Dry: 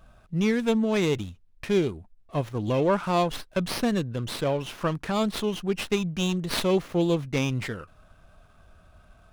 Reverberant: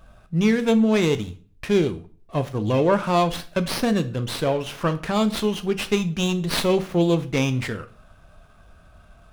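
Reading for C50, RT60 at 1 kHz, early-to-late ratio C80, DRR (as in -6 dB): 15.5 dB, 0.40 s, 20.5 dB, 9.5 dB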